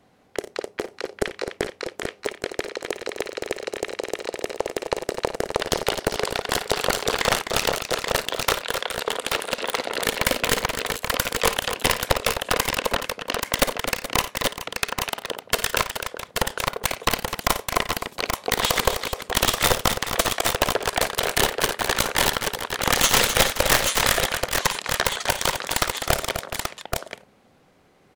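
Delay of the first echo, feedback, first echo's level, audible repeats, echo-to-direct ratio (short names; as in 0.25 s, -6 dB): 54 ms, no steady repeat, -13.0 dB, 5, -2.0 dB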